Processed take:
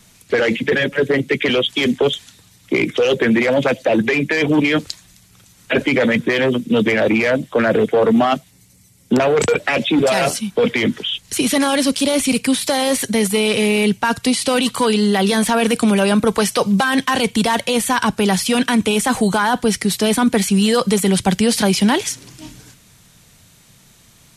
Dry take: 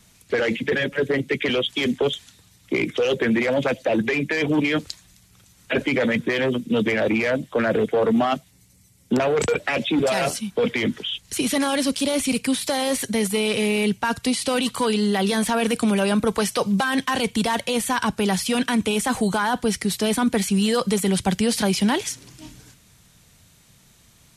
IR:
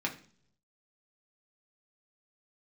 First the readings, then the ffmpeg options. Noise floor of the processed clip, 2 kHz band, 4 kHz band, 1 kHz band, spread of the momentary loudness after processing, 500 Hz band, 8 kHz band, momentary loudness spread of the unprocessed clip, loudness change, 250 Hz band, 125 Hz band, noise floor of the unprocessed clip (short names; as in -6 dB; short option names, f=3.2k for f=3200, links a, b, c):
-50 dBFS, +5.5 dB, +5.5 dB, +5.5 dB, 4 LU, +5.5 dB, +5.5 dB, 4 LU, +5.5 dB, +5.5 dB, +5.0 dB, -55 dBFS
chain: -af "equalizer=f=63:t=o:w=0.77:g=-5.5,volume=5.5dB"